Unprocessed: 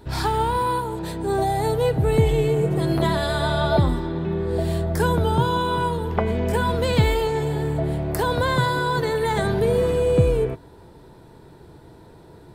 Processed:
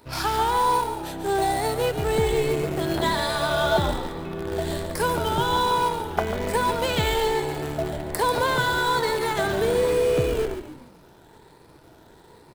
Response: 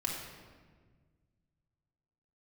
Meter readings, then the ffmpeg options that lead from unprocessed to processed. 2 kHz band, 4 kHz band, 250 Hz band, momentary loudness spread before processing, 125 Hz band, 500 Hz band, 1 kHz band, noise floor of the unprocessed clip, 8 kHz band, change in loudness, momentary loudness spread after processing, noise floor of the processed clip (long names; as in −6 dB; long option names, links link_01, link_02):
+1.5 dB, +2.5 dB, −5.0 dB, 5 LU, −9.0 dB, −2.0 dB, +1.0 dB, −47 dBFS, +4.0 dB, −2.0 dB, 8 LU, −52 dBFS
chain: -filter_complex "[0:a]afftfilt=real='re*pow(10,6/40*sin(2*PI*(0.94*log(max(b,1)*sr/1024/100)/log(2)-(1.2)*(pts-256)/sr)))':imag='im*pow(10,6/40*sin(2*PI*(0.94*log(max(b,1)*sr/1024/100)/log(2)-(1.2)*(pts-256)/sr)))':win_size=1024:overlap=0.75,lowshelf=frequency=390:gain=-9.5,asplit=2[link_01][link_02];[link_02]acrusher=bits=5:dc=4:mix=0:aa=0.000001,volume=-7.5dB[link_03];[link_01][link_03]amix=inputs=2:normalize=0,asplit=5[link_04][link_05][link_06][link_07][link_08];[link_05]adelay=142,afreqshift=-66,volume=-9dB[link_09];[link_06]adelay=284,afreqshift=-132,volume=-17.4dB[link_10];[link_07]adelay=426,afreqshift=-198,volume=-25.8dB[link_11];[link_08]adelay=568,afreqshift=-264,volume=-34.2dB[link_12];[link_04][link_09][link_10][link_11][link_12]amix=inputs=5:normalize=0,adynamicequalizer=threshold=0.0141:dfrequency=110:dqfactor=1:tfrequency=110:tqfactor=1:attack=5:release=100:ratio=0.375:range=1.5:mode=cutabove:tftype=bell,volume=-2dB"